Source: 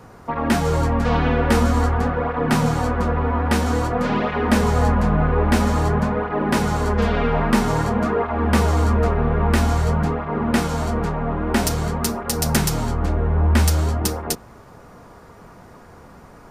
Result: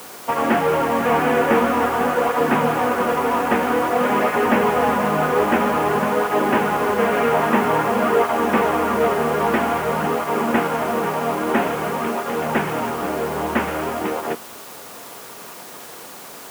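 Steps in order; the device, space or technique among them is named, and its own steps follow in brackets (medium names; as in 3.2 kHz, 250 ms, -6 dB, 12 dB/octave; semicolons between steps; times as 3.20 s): army field radio (band-pass 320–3000 Hz; CVSD coder 16 kbps; white noise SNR 20 dB); high-pass 89 Hz; trim +6 dB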